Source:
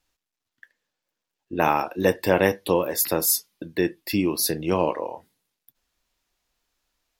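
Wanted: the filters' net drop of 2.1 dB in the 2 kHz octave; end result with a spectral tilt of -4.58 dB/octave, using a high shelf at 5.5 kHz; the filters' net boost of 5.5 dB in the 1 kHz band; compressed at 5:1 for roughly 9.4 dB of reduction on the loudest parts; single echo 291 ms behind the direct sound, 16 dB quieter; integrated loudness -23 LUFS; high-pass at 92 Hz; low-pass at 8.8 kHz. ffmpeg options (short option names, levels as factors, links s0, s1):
-af "highpass=92,lowpass=8800,equalizer=f=1000:t=o:g=8,equalizer=f=2000:t=o:g=-4.5,highshelf=f=5500:g=-9,acompressor=threshold=0.0794:ratio=5,aecho=1:1:291:0.158,volume=2"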